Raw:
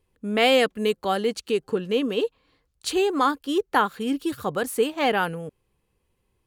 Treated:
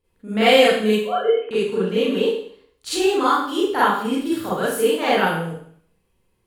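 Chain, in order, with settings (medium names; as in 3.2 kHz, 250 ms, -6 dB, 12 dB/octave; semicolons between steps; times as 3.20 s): 0.99–1.51 s: formants replaced by sine waves; Schroeder reverb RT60 0.59 s, combs from 33 ms, DRR -10 dB; trim -6 dB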